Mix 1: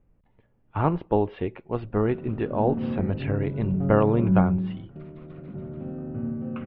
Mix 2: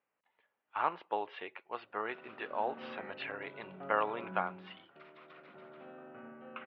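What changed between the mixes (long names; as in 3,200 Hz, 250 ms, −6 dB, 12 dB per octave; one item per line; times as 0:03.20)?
background +4.0 dB
master: add high-pass filter 1,100 Hz 12 dB per octave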